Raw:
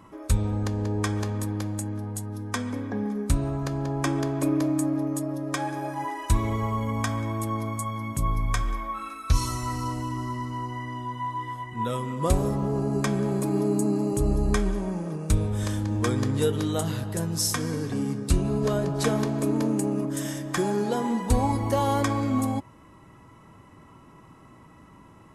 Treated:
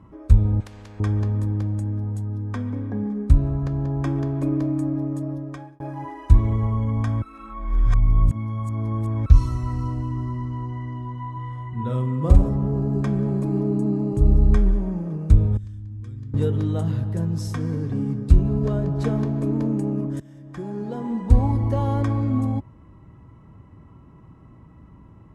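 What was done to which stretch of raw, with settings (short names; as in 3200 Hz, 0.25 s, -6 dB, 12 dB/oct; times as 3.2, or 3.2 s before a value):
0.6–1 spectral compressor 4:1
2.25–2.77 high shelf 5800 Hz -6.5 dB
5.32–5.8 fade out
7.22–9.26 reverse
11.32–12.49 doubler 47 ms -4 dB
13.6–14.15 high shelf 5700 Hz -6 dB
15.57–16.34 passive tone stack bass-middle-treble 6-0-2
20.2–21.37 fade in, from -20.5 dB
whole clip: HPF 40 Hz; RIAA curve playback; gain -5 dB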